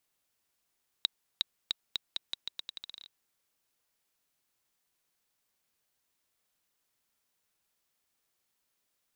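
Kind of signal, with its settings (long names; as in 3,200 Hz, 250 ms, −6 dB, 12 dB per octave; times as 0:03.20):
bouncing ball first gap 0.36 s, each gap 0.83, 3,840 Hz, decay 14 ms −11 dBFS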